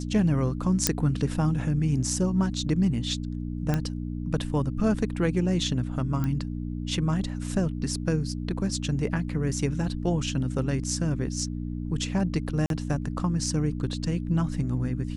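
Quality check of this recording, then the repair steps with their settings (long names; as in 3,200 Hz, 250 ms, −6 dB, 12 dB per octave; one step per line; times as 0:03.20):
mains hum 60 Hz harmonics 5 −32 dBFS
0:00.87: click −3 dBFS
0:03.74: click −13 dBFS
0:06.24: click −17 dBFS
0:12.66–0:12.70: drop-out 42 ms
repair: click removal
hum removal 60 Hz, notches 5
repair the gap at 0:12.66, 42 ms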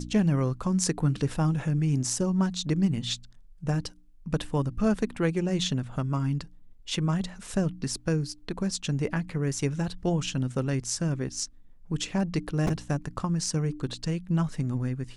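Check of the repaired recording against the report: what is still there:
none of them is left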